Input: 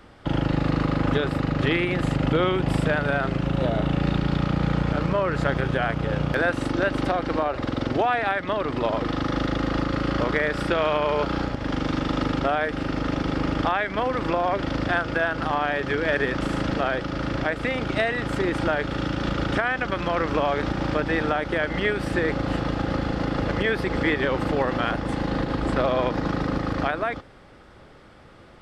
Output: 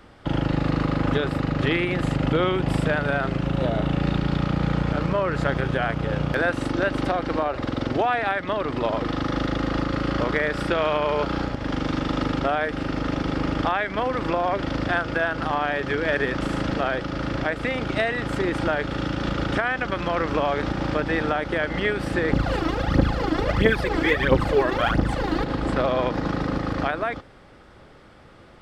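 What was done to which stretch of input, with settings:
22.33–25.44 s: phaser 1.5 Hz, delay 3.2 ms, feedback 71%

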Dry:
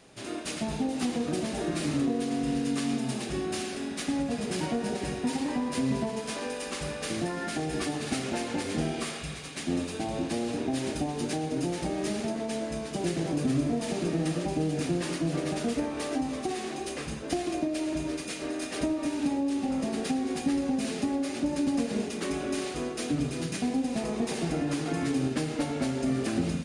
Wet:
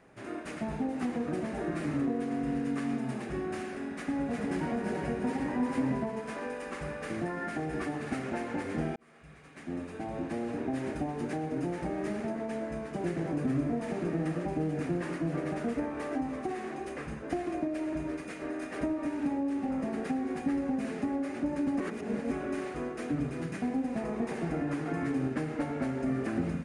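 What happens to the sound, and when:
3.85–5.99 s: delay 358 ms -4 dB
8.96–10.93 s: fade in equal-power
21.80–22.31 s: reverse
whole clip: resonant high shelf 2.6 kHz -11 dB, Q 1.5; trim -3 dB

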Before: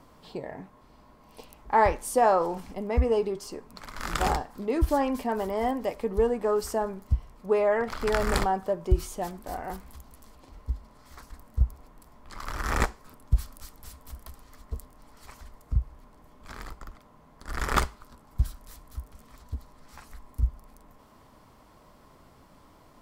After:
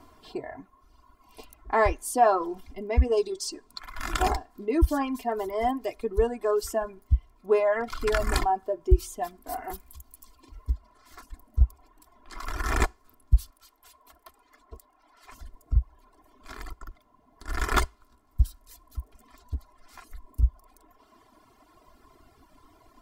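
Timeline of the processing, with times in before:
3.17–3.79 s: high-order bell 5.5 kHz +8.5 dB
9.49–10.74 s: treble shelf 8 kHz +9.5 dB
13.50–15.32 s: tone controls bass -15 dB, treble -7 dB
whole clip: reverb removal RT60 2 s; band-stop 570 Hz, Q 12; comb 2.9 ms, depth 67%

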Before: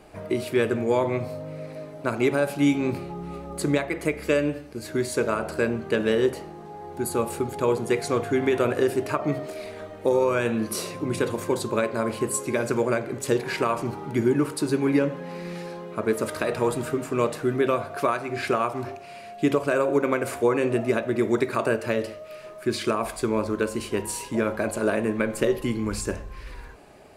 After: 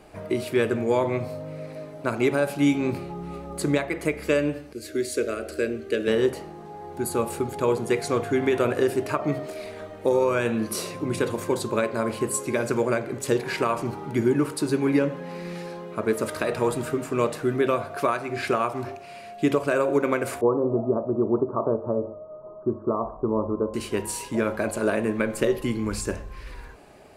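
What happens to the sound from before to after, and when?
4.73–6.08 s: static phaser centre 380 Hz, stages 4
20.41–23.74 s: steep low-pass 1.2 kHz 72 dB/octave

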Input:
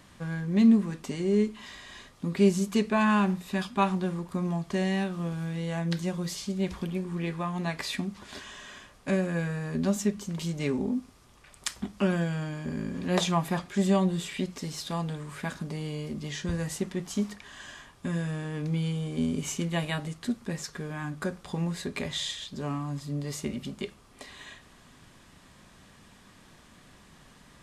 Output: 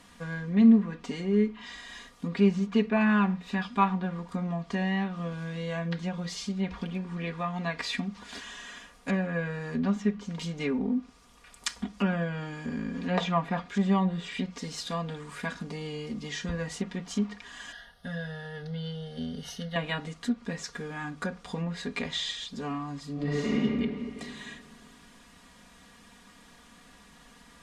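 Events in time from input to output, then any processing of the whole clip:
17.72–19.76 s: static phaser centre 1.6 kHz, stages 8
23.13–23.60 s: reverb throw, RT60 2.2 s, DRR -9 dB
whole clip: low-pass that closes with the level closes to 2.6 kHz, closed at -25 dBFS; bass shelf 480 Hz -3.5 dB; comb 4.2 ms, depth 65%

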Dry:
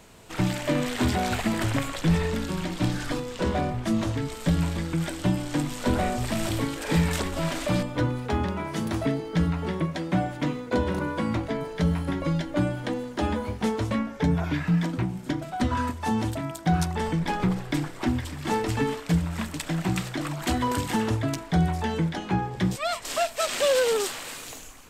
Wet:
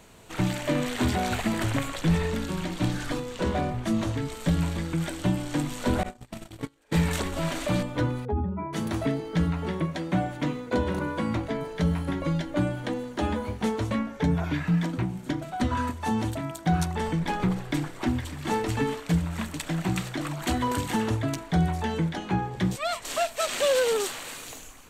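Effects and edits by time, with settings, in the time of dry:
6.03–7.04 s: gate -25 dBFS, range -31 dB
8.25–8.73 s: spectral contrast enhancement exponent 2.2
whole clip: band-stop 5.1 kHz, Q 13; trim -1 dB

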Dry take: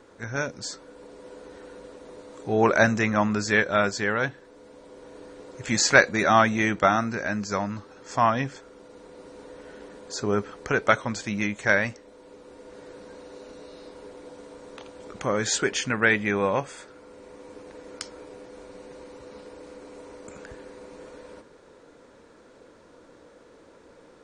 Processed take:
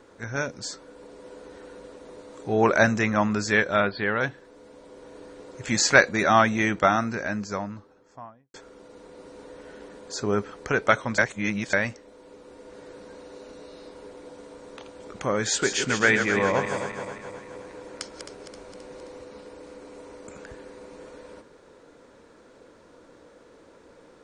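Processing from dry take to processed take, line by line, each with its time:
3.80–4.21 s: steep low-pass 4.5 kHz 96 dB/octave
7.07–8.54 s: studio fade out
11.18–11.73 s: reverse
15.47–19.24 s: backward echo that repeats 132 ms, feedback 72%, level -7 dB

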